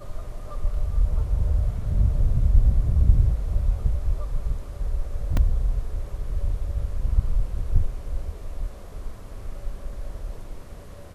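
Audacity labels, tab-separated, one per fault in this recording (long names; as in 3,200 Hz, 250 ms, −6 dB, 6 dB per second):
5.370000	5.370000	drop-out 2.4 ms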